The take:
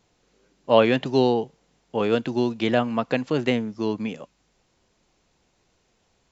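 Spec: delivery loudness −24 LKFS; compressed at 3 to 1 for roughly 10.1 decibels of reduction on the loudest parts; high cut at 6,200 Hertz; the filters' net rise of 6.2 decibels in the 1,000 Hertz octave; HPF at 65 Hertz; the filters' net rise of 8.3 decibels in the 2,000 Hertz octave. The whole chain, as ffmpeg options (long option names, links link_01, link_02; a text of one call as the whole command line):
ffmpeg -i in.wav -af "highpass=65,lowpass=6200,equalizer=frequency=1000:width_type=o:gain=6,equalizer=frequency=2000:width_type=o:gain=9,acompressor=threshold=-21dB:ratio=3,volume=2dB" out.wav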